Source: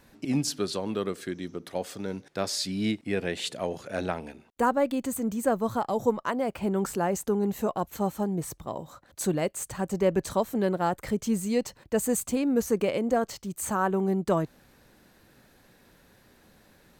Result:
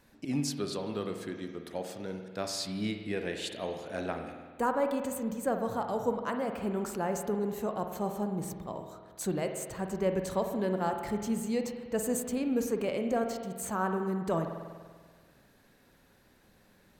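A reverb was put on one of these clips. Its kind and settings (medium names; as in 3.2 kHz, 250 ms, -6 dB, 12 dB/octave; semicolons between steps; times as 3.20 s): spring tank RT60 1.6 s, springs 48 ms, chirp 35 ms, DRR 5 dB; trim -5.5 dB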